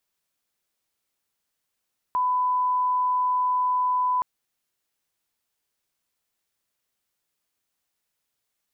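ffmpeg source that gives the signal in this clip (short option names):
-f lavfi -i "sine=f=1000:d=2.07:r=44100,volume=-1.94dB"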